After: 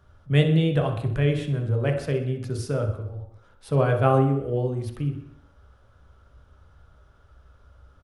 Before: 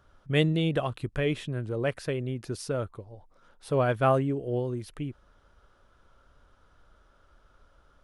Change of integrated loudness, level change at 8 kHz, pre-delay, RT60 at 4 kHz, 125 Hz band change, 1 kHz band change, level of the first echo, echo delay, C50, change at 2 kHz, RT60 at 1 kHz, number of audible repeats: +5.0 dB, can't be measured, 3 ms, 0.60 s, +8.0 dB, +2.5 dB, −12.0 dB, 63 ms, 7.0 dB, +1.0 dB, 0.70 s, 1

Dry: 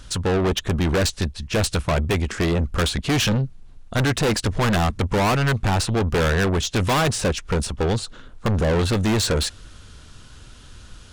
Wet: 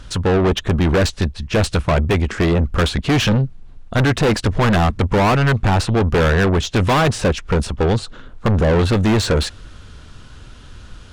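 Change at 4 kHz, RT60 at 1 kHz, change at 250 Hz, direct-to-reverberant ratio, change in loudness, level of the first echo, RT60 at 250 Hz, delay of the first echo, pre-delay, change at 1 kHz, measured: +1.0 dB, no reverb audible, +5.0 dB, no reverb audible, +4.5 dB, no echo audible, no reverb audible, no echo audible, no reverb audible, +4.5 dB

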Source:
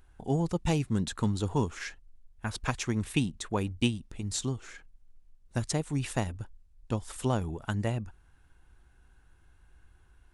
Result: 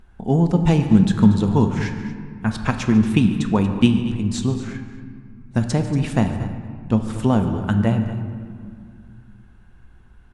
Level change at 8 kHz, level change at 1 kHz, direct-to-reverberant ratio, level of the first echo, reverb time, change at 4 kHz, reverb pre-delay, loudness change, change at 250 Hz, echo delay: +0.5 dB, +9.0 dB, 5.5 dB, −17.0 dB, 2.1 s, +5.0 dB, 4 ms, +12.5 dB, +15.0 dB, 145 ms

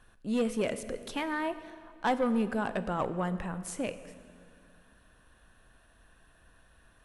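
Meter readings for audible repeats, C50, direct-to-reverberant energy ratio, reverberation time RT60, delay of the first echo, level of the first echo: no echo audible, 13.0 dB, 11.5 dB, 2.3 s, no echo audible, no echo audible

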